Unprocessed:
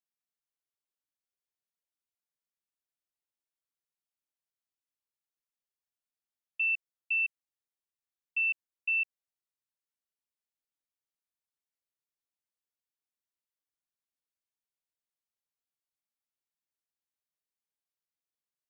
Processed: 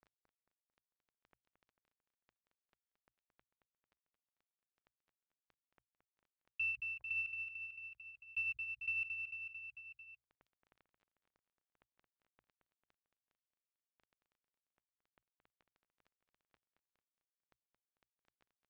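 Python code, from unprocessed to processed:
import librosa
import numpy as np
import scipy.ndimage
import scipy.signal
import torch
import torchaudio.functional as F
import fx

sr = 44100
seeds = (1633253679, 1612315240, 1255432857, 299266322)

y = scipy.signal.medfilt(x, 25)
y = scipy.signal.sosfilt(scipy.signal.butter(2, 2500.0, 'lowpass', fs=sr, output='sos'), y)
y = fx.hum_notches(y, sr, base_hz=60, count=2)
y = fx.dereverb_blind(y, sr, rt60_s=0.78)
y = fx.tremolo(y, sr, hz=10.0, depth=0.63, at=(6.69, 9.01))
y = fx.echo_feedback(y, sr, ms=223, feedback_pct=46, wet_db=-10.5)
y = fx.env_flatten(y, sr, amount_pct=50)
y = y * 10.0 ** (4.0 / 20.0)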